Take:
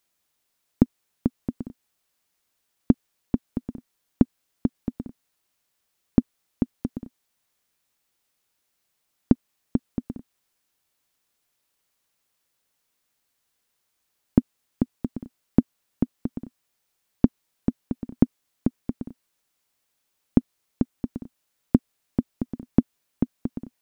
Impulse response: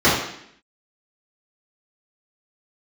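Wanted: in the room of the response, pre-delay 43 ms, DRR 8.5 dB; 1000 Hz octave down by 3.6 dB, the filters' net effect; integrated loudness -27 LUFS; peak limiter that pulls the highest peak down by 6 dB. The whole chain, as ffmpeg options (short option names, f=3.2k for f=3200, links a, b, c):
-filter_complex "[0:a]equalizer=f=1k:t=o:g=-5,alimiter=limit=-8dB:level=0:latency=1,asplit=2[a][b];[1:a]atrim=start_sample=2205,adelay=43[c];[b][c]afir=irnorm=-1:irlink=0,volume=-32.5dB[d];[a][d]amix=inputs=2:normalize=0,volume=4dB"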